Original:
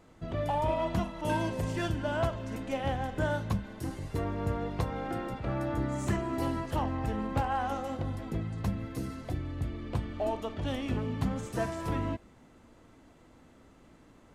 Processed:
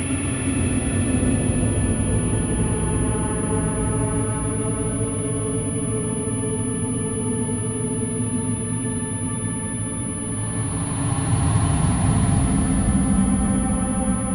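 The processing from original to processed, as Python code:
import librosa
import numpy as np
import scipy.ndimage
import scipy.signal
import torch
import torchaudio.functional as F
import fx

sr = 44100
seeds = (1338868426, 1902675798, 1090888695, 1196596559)

y = fx.paulstretch(x, sr, seeds[0], factor=34.0, window_s=0.1, from_s=10.88)
y = fx.pwm(y, sr, carrier_hz=10000.0)
y = y * 10.0 ** (9.0 / 20.0)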